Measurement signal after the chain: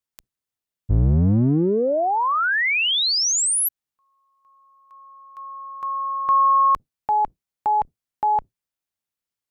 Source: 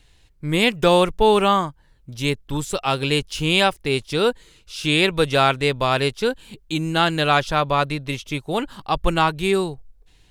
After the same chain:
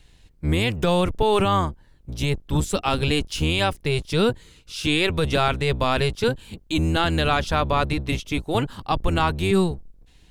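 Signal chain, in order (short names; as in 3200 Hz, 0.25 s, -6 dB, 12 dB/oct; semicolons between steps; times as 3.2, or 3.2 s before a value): octaver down 1 oct, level +2 dB; limiter -10 dBFS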